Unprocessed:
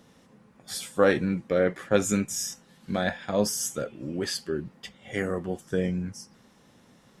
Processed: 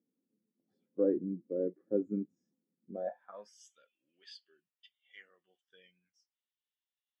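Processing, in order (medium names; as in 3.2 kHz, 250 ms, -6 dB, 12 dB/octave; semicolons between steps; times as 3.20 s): band-pass sweep 320 Hz -> 3.1 kHz, 2.88–3.61 s; spectral contrast expander 1.5:1; trim -2.5 dB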